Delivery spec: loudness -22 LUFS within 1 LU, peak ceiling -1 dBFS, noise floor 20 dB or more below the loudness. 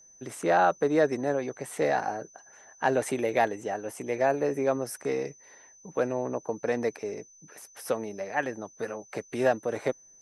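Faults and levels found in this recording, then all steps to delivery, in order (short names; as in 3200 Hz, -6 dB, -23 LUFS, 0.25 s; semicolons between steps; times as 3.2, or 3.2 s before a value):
steady tone 6100 Hz; tone level -53 dBFS; loudness -29.0 LUFS; peak -10.5 dBFS; loudness target -22.0 LUFS
-> notch 6100 Hz, Q 30; gain +7 dB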